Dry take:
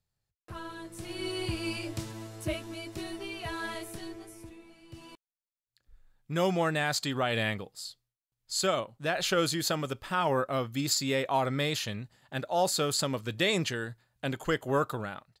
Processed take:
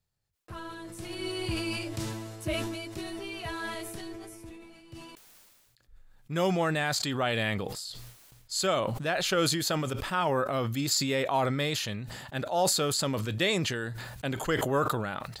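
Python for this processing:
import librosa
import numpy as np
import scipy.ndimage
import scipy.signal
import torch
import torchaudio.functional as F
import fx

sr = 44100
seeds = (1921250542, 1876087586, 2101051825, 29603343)

y = fx.sustainer(x, sr, db_per_s=32.0)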